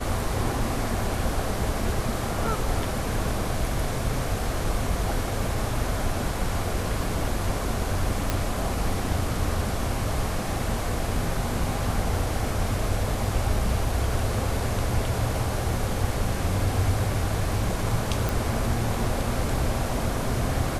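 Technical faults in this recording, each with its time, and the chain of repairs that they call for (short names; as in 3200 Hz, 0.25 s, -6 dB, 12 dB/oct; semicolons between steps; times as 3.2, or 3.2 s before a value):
8.3 pop
18.29 pop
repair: de-click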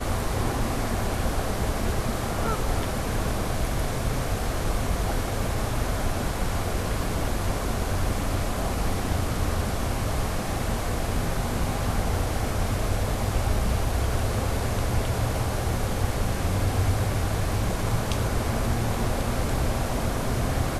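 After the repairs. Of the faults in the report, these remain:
none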